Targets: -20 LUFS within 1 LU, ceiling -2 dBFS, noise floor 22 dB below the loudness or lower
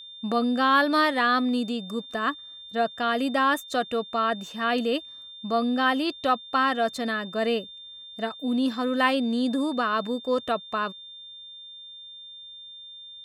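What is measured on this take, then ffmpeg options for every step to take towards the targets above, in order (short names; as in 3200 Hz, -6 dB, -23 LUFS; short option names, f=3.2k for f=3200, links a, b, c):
steady tone 3600 Hz; tone level -41 dBFS; loudness -25.5 LUFS; peak -8.5 dBFS; loudness target -20.0 LUFS
-> -af "bandreject=f=3.6k:w=30"
-af "volume=5.5dB"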